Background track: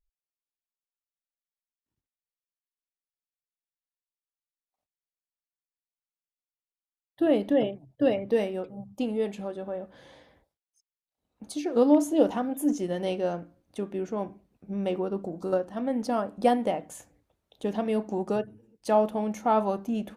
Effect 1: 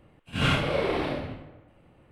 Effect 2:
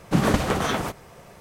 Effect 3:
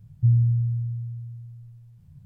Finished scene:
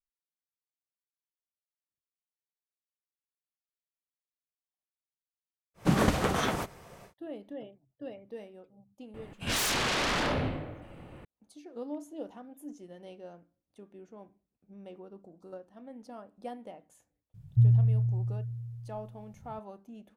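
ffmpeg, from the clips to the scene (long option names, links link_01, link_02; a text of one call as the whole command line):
ffmpeg -i bed.wav -i cue0.wav -i cue1.wav -i cue2.wav -filter_complex "[0:a]volume=-18.5dB[link_01];[1:a]aeval=exprs='0.251*sin(PI/2*8.91*val(0)/0.251)':channel_layout=same[link_02];[2:a]atrim=end=1.4,asetpts=PTS-STARTPTS,volume=-4.5dB,afade=type=in:duration=0.1,afade=type=out:start_time=1.3:duration=0.1,adelay=5740[link_03];[link_02]atrim=end=2.11,asetpts=PTS-STARTPTS,volume=-14dB,afade=type=in:duration=0.004:curve=hsin,afade=type=out:start_time=2.106:duration=0.004:curve=hsin,adelay=403074S[link_04];[3:a]atrim=end=2.25,asetpts=PTS-STARTPTS,volume=-2.5dB,afade=type=in:duration=0.004:curve=hsin,afade=type=out:start_time=2.246:duration=0.004:curve=hsin,adelay=17340[link_05];[link_01][link_03][link_04][link_05]amix=inputs=4:normalize=0" out.wav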